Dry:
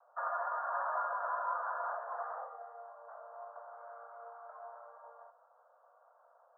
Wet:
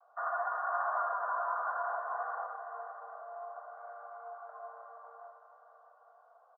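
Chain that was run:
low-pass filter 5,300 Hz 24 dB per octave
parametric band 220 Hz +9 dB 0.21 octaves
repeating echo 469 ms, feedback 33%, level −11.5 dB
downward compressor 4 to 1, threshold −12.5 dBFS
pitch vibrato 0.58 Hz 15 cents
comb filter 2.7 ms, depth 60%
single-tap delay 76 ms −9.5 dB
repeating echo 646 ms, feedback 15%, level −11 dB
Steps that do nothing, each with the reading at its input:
low-pass filter 5,300 Hz: nothing at its input above 1,800 Hz
parametric band 220 Hz: nothing at its input below 450 Hz
downward compressor, threshold −12.5 dBFS: peak of its input −23.0 dBFS

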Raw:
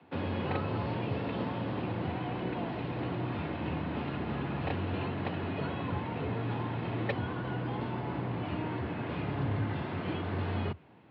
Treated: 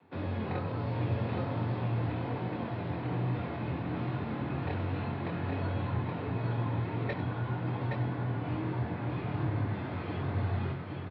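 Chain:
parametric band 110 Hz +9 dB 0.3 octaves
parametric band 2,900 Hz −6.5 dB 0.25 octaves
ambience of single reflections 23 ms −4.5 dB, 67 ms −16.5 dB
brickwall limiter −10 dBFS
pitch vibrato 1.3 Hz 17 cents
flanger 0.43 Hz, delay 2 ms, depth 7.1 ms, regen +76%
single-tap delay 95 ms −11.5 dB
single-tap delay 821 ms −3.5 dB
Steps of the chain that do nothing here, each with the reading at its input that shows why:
brickwall limiter −10 dBFS: peak of its input −16.5 dBFS

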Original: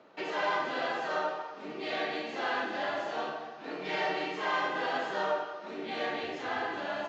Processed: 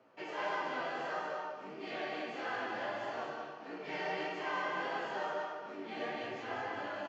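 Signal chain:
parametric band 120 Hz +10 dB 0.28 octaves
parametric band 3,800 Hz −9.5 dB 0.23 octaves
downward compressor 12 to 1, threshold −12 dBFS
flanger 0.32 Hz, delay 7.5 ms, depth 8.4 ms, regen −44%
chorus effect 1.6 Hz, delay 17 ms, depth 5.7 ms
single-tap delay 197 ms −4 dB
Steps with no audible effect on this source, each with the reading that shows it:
downward compressor, threshold −12 dBFS: peak of its input −18.5 dBFS

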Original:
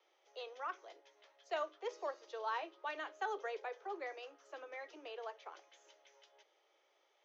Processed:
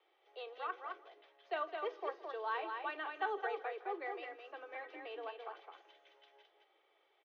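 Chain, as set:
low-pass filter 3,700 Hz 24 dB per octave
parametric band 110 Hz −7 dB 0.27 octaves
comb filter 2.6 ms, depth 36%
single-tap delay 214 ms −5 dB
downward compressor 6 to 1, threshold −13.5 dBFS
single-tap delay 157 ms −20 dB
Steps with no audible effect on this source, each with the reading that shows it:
parametric band 110 Hz: nothing at its input below 270 Hz
downward compressor, threshold −13.5 dBFS: peak of its input −25.5 dBFS

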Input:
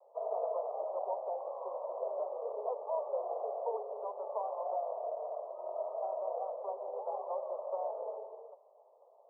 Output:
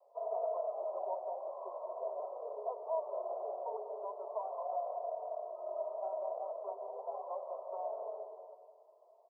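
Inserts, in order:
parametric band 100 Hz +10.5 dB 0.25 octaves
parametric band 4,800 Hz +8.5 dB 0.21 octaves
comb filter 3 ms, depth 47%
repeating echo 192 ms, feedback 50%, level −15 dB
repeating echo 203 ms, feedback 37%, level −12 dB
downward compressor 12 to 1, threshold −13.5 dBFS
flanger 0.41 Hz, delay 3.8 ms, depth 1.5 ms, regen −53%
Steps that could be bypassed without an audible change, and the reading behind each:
parametric band 100 Hz: nothing at its input below 360 Hz
parametric band 4,800 Hz: nothing at its input above 1,200 Hz
downward compressor, threshold −13.5 dBFS: peak of its input −21.5 dBFS

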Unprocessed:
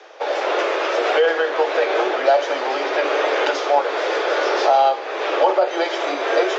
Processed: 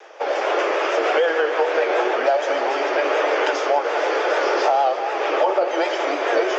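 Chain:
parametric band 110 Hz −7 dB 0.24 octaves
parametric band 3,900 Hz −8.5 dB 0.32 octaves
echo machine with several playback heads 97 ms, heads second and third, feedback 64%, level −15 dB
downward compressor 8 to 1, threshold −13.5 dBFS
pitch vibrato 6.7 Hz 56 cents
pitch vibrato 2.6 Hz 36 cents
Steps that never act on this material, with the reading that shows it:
parametric band 110 Hz: nothing at its input below 250 Hz

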